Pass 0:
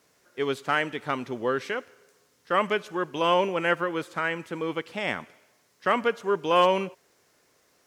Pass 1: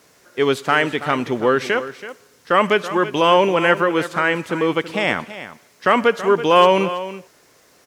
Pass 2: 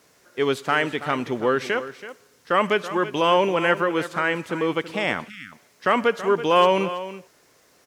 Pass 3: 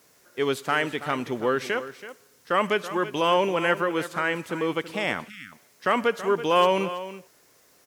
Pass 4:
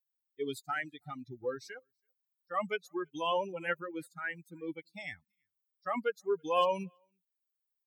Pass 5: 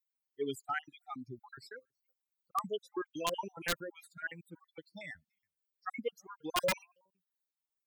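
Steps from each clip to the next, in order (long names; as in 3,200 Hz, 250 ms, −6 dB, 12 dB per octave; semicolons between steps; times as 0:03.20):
in parallel at −1 dB: brickwall limiter −20 dBFS, peak gain reduction 11 dB; on the sum: single-tap delay 329 ms −13.5 dB; level +5.5 dB
time-frequency box erased 0:05.29–0:05.52, 320–1,200 Hz; level −4.5 dB
high-shelf EQ 9,700 Hz +10 dB; level −3 dB
spectral dynamics exaggerated over time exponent 3; level −5 dB
time-frequency cells dropped at random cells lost 48%; wrap-around overflow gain 24 dB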